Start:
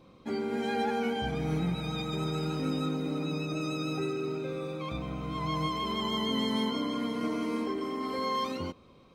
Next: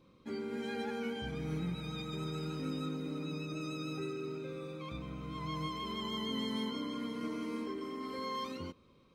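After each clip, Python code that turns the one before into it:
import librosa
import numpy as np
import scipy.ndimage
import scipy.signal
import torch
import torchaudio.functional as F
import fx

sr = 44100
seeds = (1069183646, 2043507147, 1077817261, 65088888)

y = fx.peak_eq(x, sr, hz=730.0, db=-9.5, octaves=0.46)
y = y * 10.0 ** (-6.5 / 20.0)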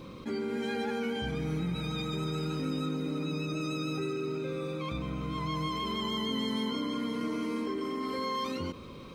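y = fx.env_flatten(x, sr, amount_pct=50)
y = y * 10.0 ** (3.5 / 20.0)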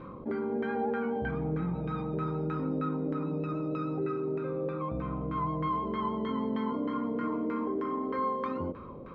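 y = fx.filter_lfo_lowpass(x, sr, shape='saw_down', hz=3.2, low_hz=570.0, high_hz=1600.0, q=2.2)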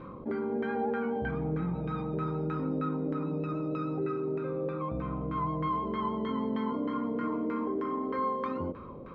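y = x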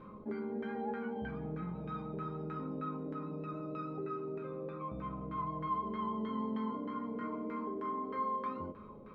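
y = fx.comb_fb(x, sr, f0_hz=210.0, decay_s=0.21, harmonics='all', damping=0.0, mix_pct=80)
y = y * 10.0 ** (2.0 / 20.0)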